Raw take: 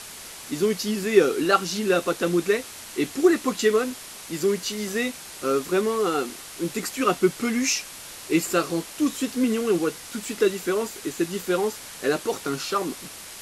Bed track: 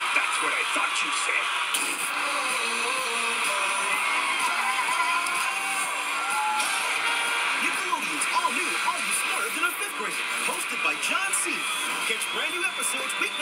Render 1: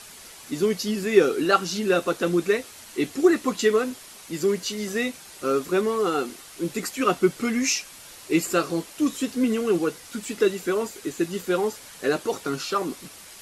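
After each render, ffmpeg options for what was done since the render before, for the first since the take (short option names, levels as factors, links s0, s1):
-af "afftdn=nr=6:nf=-41"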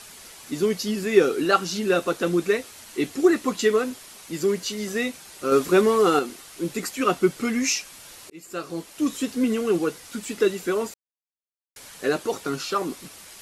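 -filter_complex "[0:a]asplit=6[s0][s1][s2][s3][s4][s5];[s0]atrim=end=5.522[s6];[s1]atrim=start=5.518:end=6.192,asetpts=PTS-STARTPTS,volume=1.78[s7];[s2]atrim=start=6.188:end=8.3,asetpts=PTS-STARTPTS,afade=t=out:st=2.108:d=0.004:c=hsin[s8];[s3]atrim=start=8.3:end=10.94,asetpts=PTS-STARTPTS,afade=t=in:d=0.82,afade=t=out:st=2.636:d=0.004:c=hsin[s9];[s4]atrim=start=10.94:end=11.76,asetpts=PTS-STARTPTS,volume=0[s10];[s5]atrim=start=11.76,asetpts=PTS-STARTPTS,afade=t=in:d=0.004:c=hsin[s11];[s6][s7]acrossfade=d=0.004:c1=hsin:c2=hsin[s12];[s8][s9][s10][s11]concat=n=4:v=0:a=1[s13];[s12][s13]acrossfade=d=0.004:c1=hsin:c2=hsin"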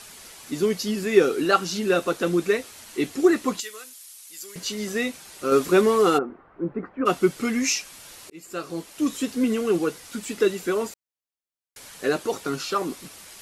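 -filter_complex "[0:a]asettb=1/sr,asplit=3[s0][s1][s2];[s0]atrim=end=3.604[s3];[s1]atrim=start=3.6:end=4.56,asetpts=PTS-STARTPTS,afade=t=in:d=0.004:c=qsin,afade=t=out:st=0.956:d=0.004:c=qsin,aderivative[s4];[s2]atrim=start=4.556[s5];[s3][s4]acrossfade=d=0.004:c1=hsin:c2=qsin[s6];[s6][s5]acrossfade=d=0.004:c1=qsin:c2=hsin,asplit=3[s7][s8][s9];[s7]afade=t=out:st=6.17:d=0.02[s10];[s8]lowpass=f=1400:w=0.5412,lowpass=f=1400:w=1.3066,afade=t=in:st=6.17:d=0.02,afade=t=out:st=7.05:d=0.02[s11];[s9]afade=t=in:st=7.05:d=0.02[s12];[s10][s11][s12]amix=inputs=3:normalize=0"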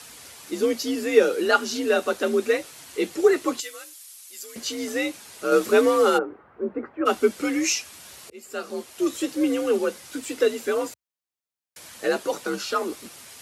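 -af "afreqshift=53"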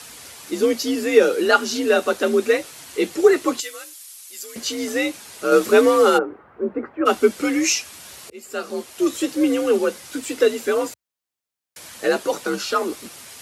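-af "volume=1.58,alimiter=limit=0.794:level=0:latency=1"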